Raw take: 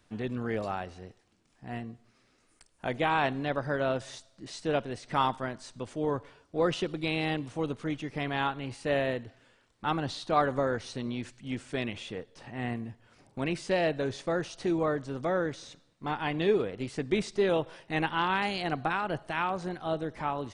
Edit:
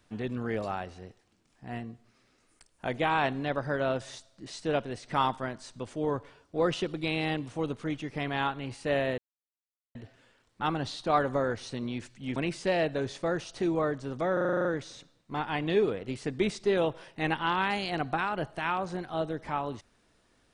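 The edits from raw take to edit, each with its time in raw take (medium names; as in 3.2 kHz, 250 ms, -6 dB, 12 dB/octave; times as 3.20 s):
9.18 s: insert silence 0.77 s
11.59–13.40 s: delete
15.37 s: stutter 0.04 s, 9 plays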